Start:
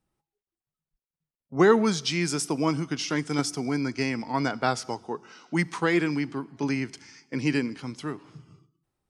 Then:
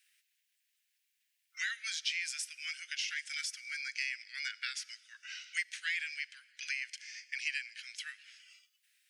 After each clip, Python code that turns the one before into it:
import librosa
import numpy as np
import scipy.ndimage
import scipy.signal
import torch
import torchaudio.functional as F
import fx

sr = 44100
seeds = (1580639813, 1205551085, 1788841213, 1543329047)

y = scipy.signal.sosfilt(scipy.signal.butter(12, 1600.0, 'highpass', fs=sr, output='sos'), x)
y = fx.peak_eq(y, sr, hz=2600.0, db=5.5, octaves=0.83)
y = fx.band_squash(y, sr, depth_pct=70)
y = F.gain(torch.from_numpy(y), -6.0).numpy()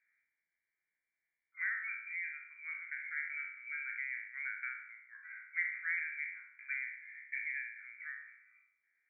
y = fx.spec_trails(x, sr, decay_s=0.75)
y = fx.brickwall_lowpass(y, sr, high_hz=2400.0)
y = F.gain(torch.from_numpy(y), -2.0).numpy()